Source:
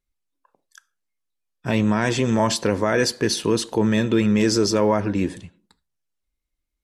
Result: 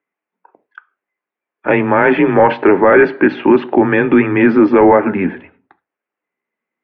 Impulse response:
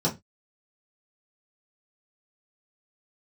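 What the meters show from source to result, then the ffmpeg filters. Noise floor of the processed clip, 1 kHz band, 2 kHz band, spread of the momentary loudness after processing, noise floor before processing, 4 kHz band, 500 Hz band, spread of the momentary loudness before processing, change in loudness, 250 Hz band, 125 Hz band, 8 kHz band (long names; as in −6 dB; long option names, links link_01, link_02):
−85 dBFS, +12.5 dB, +12.0 dB, 7 LU, −80 dBFS, can't be measured, +10.5 dB, 6 LU, +9.0 dB, +8.5 dB, +0.5 dB, below −35 dB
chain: -filter_complex "[0:a]asplit=2[link_01][link_02];[1:a]atrim=start_sample=2205[link_03];[link_02][link_03]afir=irnorm=-1:irlink=0,volume=-27dB[link_04];[link_01][link_04]amix=inputs=2:normalize=0,highpass=frequency=370:width_type=q:width=0.5412,highpass=frequency=370:width_type=q:width=1.307,lowpass=frequency=2400:width_type=q:width=0.5176,lowpass=frequency=2400:width_type=q:width=0.7071,lowpass=frequency=2400:width_type=q:width=1.932,afreqshift=-92,apsyclip=16dB,volume=-2dB"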